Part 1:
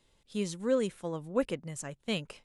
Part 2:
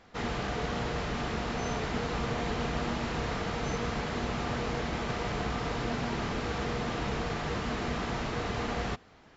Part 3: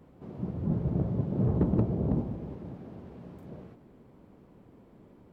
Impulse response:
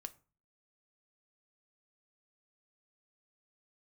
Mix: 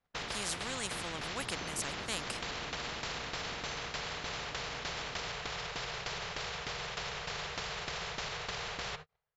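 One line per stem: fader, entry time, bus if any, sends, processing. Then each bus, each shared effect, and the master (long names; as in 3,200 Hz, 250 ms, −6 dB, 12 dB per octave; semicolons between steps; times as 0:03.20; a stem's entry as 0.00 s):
−4.0 dB, 0.00 s, no bus, no send, no processing
−3.5 dB, 0.00 s, bus A, send −10 dB, elliptic band-stop filter 170–420 Hz; brickwall limiter −31 dBFS, peak gain reduction 10 dB; shaped tremolo saw down 3.3 Hz, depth 80%
−17.0 dB, 0.00 s, bus A, send −5 dB, no processing
bus A: 0.0 dB, hum removal 153.6 Hz, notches 27; downward compressor 8 to 1, threshold −46 dBFS, peak gain reduction 9.5 dB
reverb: on, RT60 0.35 s, pre-delay 4 ms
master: noise gate −56 dBFS, range −43 dB; high-shelf EQ 6,500 Hz −6 dB; every bin compressed towards the loudest bin 4 to 1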